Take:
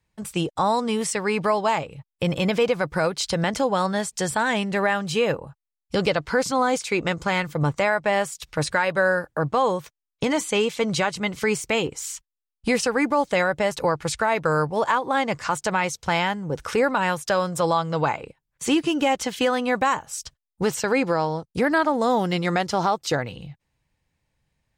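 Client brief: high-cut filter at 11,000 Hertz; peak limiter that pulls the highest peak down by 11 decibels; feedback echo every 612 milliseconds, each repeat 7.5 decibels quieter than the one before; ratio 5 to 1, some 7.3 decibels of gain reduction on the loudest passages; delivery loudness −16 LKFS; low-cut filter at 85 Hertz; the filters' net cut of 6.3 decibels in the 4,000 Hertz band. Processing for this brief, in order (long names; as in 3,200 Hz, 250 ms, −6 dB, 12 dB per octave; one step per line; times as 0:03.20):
high-pass filter 85 Hz
low-pass filter 11,000 Hz
parametric band 4,000 Hz −9 dB
downward compressor 5 to 1, threshold −25 dBFS
brickwall limiter −23.5 dBFS
repeating echo 612 ms, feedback 42%, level −7.5 dB
level +16.5 dB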